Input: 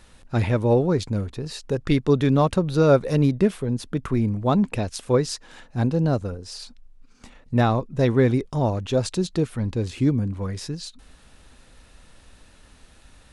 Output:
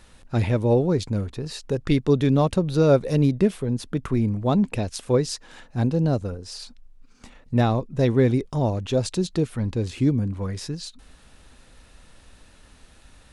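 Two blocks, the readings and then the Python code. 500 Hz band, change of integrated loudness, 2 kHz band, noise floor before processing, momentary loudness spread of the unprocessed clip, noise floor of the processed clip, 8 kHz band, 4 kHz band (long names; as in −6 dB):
−0.5 dB, −0.5 dB, −2.5 dB, −53 dBFS, 13 LU, −53 dBFS, 0.0 dB, −0.5 dB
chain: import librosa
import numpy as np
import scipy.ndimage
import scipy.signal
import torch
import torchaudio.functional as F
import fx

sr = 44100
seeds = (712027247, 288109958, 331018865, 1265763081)

y = fx.dynamic_eq(x, sr, hz=1300.0, q=1.1, threshold_db=-36.0, ratio=4.0, max_db=-5)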